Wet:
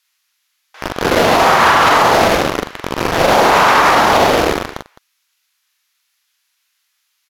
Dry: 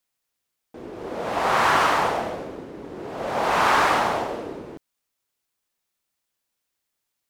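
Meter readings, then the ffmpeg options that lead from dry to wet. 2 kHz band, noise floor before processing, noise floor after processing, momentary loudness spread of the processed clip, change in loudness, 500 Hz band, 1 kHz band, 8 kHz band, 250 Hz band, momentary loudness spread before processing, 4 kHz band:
+11.0 dB, −80 dBFS, −67 dBFS, 13 LU, +10.0 dB, +13.0 dB, +10.5 dB, +13.5 dB, +13.5 dB, 19 LU, +13.5 dB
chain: -filter_complex "[0:a]acrossover=split=1100[link_01][link_02];[link_01]acrusher=bits=4:mix=0:aa=0.000001[link_03];[link_03][link_02]amix=inputs=2:normalize=0,lowpass=12000,equalizer=frequency=8500:width_type=o:width=0.44:gain=-9,aecho=1:1:43|210:0.596|0.119,alimiter=level_in=18dB:limit=-1dB:release=50:level=0:latency=1,volume=-1dB"

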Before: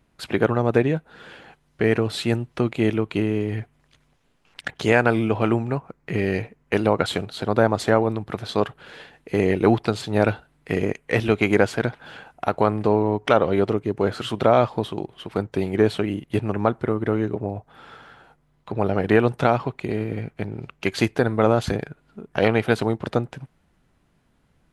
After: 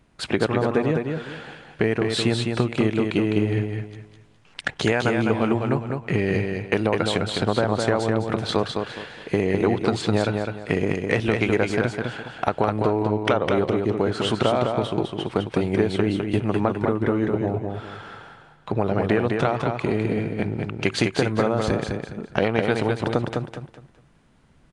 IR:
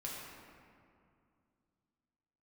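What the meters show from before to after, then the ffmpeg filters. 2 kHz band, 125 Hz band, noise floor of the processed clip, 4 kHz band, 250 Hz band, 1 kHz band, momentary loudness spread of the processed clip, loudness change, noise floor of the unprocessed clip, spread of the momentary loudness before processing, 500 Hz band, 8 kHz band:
−0.5 dB, +0.5 dB, −55 dBFS, +3.5 dB, 0.0 dB, −1.5 dB, 9 LU, −1.0 dB, −64 dBFS, 11 LU, −1.0 dB, +2.5 dB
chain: -filter_complex "[0:a]acompressor=threshold=-22dB:ratio=6,asplit=2[link_01][link_02];[link_02]aecho=0:1:206|412|618|824:0.596|0.173|0.0501|0.0145[link_03];[link_01][link_03]amix=inputs=2:normalize=0,aresample=22050,aresample=44100,volume=4.5dB"

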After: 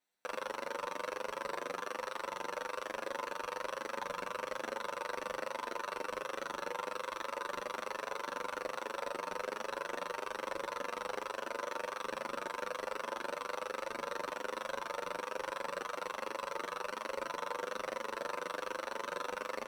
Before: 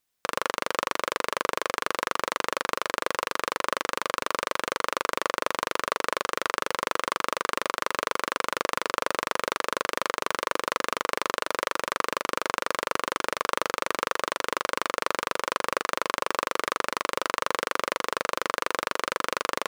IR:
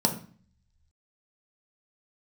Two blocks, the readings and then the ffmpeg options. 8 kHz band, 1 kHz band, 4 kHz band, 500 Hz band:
−14.5 dB, −11.5 dB, −14.5 dB, −8.5 dB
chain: -filter_complex "[0:a]alimiter=limit=-9dB:level=0:latency=1,asplit=2[link_01][link_02];[link_02]highpass=frequency=720:poles=1,volume=12dB,asoftclip=type=tanh:threshold=-9dB[link_03];[link_01][link_03]amix=inputs=2:normalize=0,lowpass=frequency=1600:poles=1,volume=-6dB,volume=21dB,asoftclip=hard,volume=-21dB,asplit=2[link_04][link_05];[1:a]atrim=start_sample=2205,highshelf=frequency=3000:gain=11[link_06];[link_05][link_06]afir=irnorm=-1:irlink=0,volume=-16.5dB[link_07];[link_04][link_07]amix=inputs=2:normalize=0,asplit=2[link_08][link_09];[link_09]adelay=8.3,afreqshift=1.2[link_10];[link_08][link_10]amix=inputs=2:normalize=1,volume=-6dB"

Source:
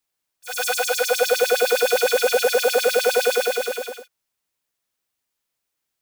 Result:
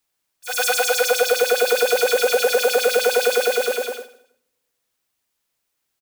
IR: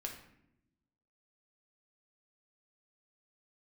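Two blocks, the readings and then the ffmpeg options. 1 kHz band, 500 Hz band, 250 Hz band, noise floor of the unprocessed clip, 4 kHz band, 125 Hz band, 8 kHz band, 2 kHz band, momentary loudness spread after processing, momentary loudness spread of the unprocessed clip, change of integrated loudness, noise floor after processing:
+1.5 dB, +1.5 dB, +1.0 dB, −80 dBFS, +1.5 dB, can't be measured, +2.0 dB, +1.5 dB, 9 LU, 8 LU, +1.0 dB, −76 dBFS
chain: -filter_complex "[0:a]acompressor=threshold=-18dB:ratio=6,aecho=1:1:161|322:0.106|0.0286,asplit=2[link_01][link_02];[1:a]atrim=start_sample=2205,adelay=36[link_03];[link_02][link_03]afir=irnorm=-1:irlink=0,volume=-14.5dB[link_04];[link_01][link_04]amix=inputs=2:normalize=0,volume=4dB"

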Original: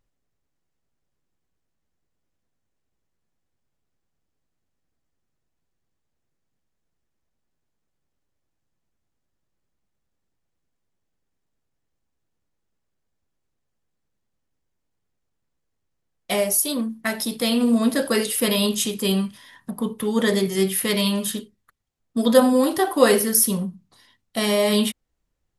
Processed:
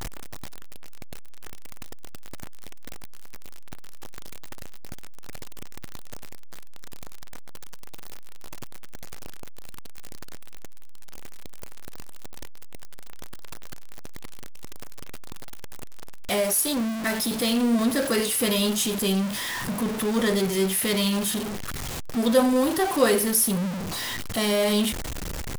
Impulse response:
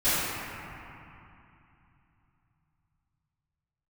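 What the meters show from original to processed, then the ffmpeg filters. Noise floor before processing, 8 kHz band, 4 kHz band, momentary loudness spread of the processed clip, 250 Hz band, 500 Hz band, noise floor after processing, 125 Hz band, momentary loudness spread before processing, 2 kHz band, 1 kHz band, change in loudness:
−77 dBFS, −1.5 dB, −1.5 dB, 12 LU, −2.5 dB, −3.5 dB, −31 dBFS, −0.5 dB, 12 LU, −1.0 dB, −2.0 dB, −3.0 dB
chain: -af "aeval=exprs='val(0)+0.5*0.112*sgn(val(0))':channel_layout=same,volume=-6dB"

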